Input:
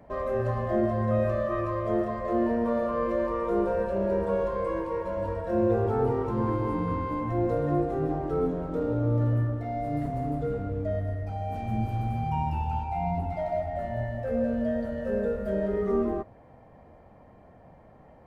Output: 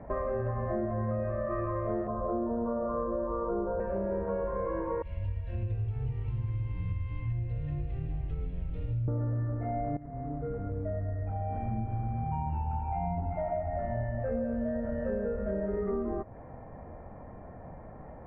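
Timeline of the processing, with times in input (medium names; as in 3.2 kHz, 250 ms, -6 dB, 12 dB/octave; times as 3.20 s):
2.07–3.80 s: steep low-pass 1.5 kHz 72 dB/octave
5.02–9.08 s: FFT filter 120 Hz 0 dB, 230 Hz -24 dB, 1.4 kHz -24 dB, 2.7 kHz +10 dB, 4.6 kHz +12 dB
9.97–13.44 s: fade in, from -16.5 dB
whole clip: low-pass 2 kHz 24 dB/octave; bass shelf 70 Hz +7.5 dB; compression, threshold -35 dBFS; trim +5.5 dB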